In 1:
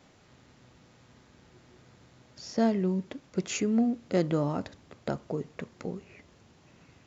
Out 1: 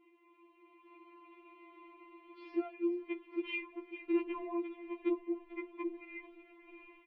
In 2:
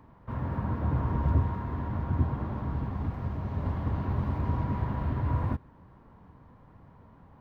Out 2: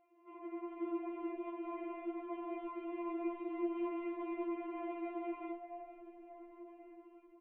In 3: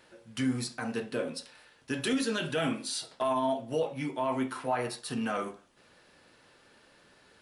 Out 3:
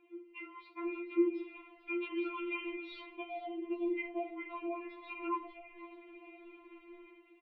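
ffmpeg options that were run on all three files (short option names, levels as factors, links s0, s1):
-filter_complex "[0:a]afftfilt=real='re*lt(hypot(re,im),0.398)':imag='im*lt(hypot(re,im),0.398)':win_size=1024:overlap=0.75,aemphasis=mode=production:type=50fm,dynaudnorm=f=580:g=3:m=3.55,highpass=f=330:t=q:w=0.5412,highpass=f=330:t=q:w=1.307,lowpass=f=3100:t=q:w=0.5176,lowpass=f=3100:t=q:w=0.7071,lowpass=f=3100:t=q:w=1.932,afreqshift=-210,acompressor=threshold=0.0355:ratio=8,asplit=3[s0][s1][s2];[s0]bandpass=f=300:t=q:w=8,volume=1[s3];[s1]bandpass=f=870:t=q:w=8,volume=0.501[s4];[s2]bandpass=f=2240:t=q:w=8,volume=0.355[s5];[s3][s4][s5]amix=inputs=3:normalize=0,asplit=2[s6][s7];[s7]asplit=4[s8][s9][s10][s11];[s8]adelay=441,afreqshift=-59,volume=0.188[s12];[s9]adelay=882,afreqshift=-118,volume=0.0851[s13];[s10]adelay=1323,afreqshift=-177,volume=0.038[s14];[s11]adelay=1764,afreqshift=-236,volume=0.0172[s15];[s12][s13][s14][s15]amix=inputs=4:normalize=0[s16];[s6][s16]amix=inputs=2:normalize=0,afftfilt=real='re*4*eq(mod(b,16),0)':imag='im*4*eq(mod(b,16),0)':win_size=2048:overlap=0.75,volume=3.35"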